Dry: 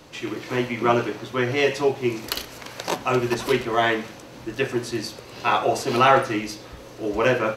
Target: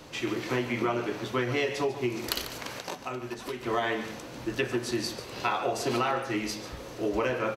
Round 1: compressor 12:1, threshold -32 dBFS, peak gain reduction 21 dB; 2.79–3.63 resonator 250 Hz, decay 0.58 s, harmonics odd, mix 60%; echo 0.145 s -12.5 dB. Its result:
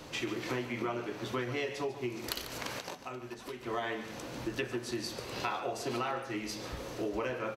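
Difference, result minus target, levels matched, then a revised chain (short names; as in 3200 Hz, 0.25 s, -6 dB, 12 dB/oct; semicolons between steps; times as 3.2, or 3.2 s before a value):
compressor: peak gain reduction +7 dB
compressor 12:1, threshold -24.5 dBFS, peak gain reduction 14 dB; 2.79–3.63 resonator 250 Hz, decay 0.58 s, harmonics odd, mix 60%; echo 0.145 s -12.5 dB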